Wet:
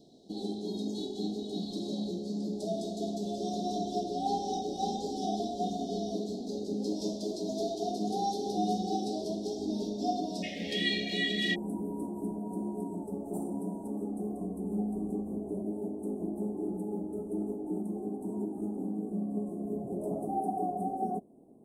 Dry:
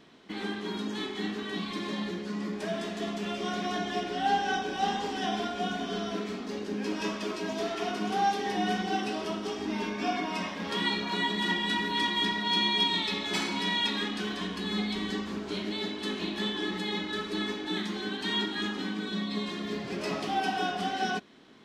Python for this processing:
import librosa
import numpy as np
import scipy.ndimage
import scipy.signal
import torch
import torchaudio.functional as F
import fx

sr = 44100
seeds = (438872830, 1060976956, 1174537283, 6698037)

y = fx.cheby1_bandstop(x, sr, low_hz=740.0, high_hz=fx.steps((0.0, 3900.0), (10.42, 1900.0), (11.54, 9000.0)), order=4)